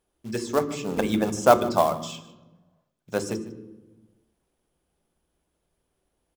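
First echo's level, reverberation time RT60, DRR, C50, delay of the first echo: -18.5 dB, 1.1 s, 9.5 dB, 12.0 dB, 151 ms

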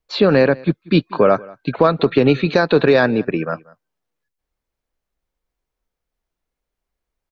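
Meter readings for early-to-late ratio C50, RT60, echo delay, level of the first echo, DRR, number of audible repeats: no reverb, no reverb, 186 ms, -23.5 dB, no reverb, 1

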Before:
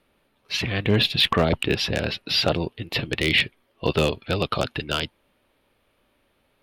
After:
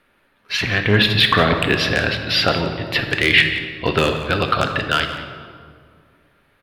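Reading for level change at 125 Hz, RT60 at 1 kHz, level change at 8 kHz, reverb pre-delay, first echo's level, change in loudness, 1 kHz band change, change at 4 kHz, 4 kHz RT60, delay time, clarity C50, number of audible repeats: +4.5 dB, 2.0 s, +3.0 dB, 3 ms, -14.0 dB, +6.0 dB, +8.5 dB, +4.5 dB, 1.2 s, 177 ms, 6.5 dB, 1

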